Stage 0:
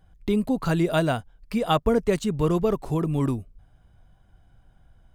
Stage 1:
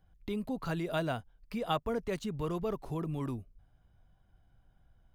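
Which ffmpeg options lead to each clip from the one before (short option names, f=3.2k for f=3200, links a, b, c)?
-filter_complex "[0:a]equalizer=f=8.1k:t=o:w=0.47:g=-6.5,acrossover=split=560|3700[a][b][c];[a]alimiter=limit=-20.5dB:level=0:latency=1[d];[d][b][c]amix=inputs=3:normalize=0,volume=-9dB"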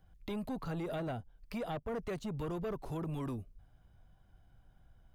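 -filter_complex "[0:a]acrossover=split=760[a][b];[a]asoftclip=type=tanh:threshold=-37.5dB[c];[b]acompressor=threshold=-50dB:ratio=10[d];[c][d]amix=inputs=2:normalize=0,volume=2.5dB"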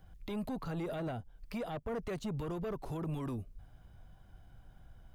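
-af "alimiter=level_in=15dB:limit=-24dB:level=0:latency=1:release=303,volume=-15dB,volume=6.5dB"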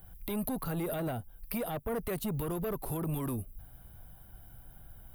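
-af "aexciter=amount=8.4:drive=7.6:freq=9.4k,volume=3.5dB"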